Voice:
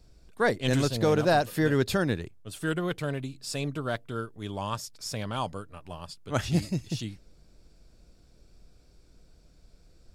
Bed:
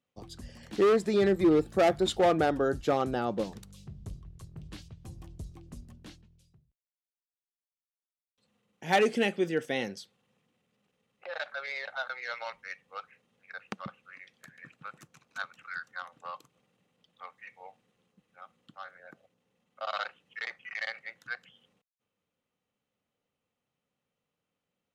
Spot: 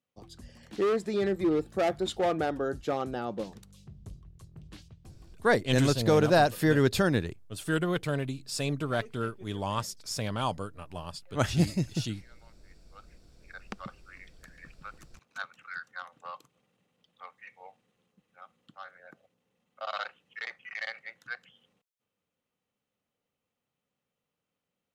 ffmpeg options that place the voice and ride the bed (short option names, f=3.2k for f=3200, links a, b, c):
-filter_complex "[0:a]adelay=5050,volume=1dB[a];[1:a]volume=19dB,afade=t=out:st=4.9:d=0.66:silence=0.1,afade=t=in:st=12.75:d=1.07:silence=0.0749894[b];[a][b]amix=inputs=2:normalize=0"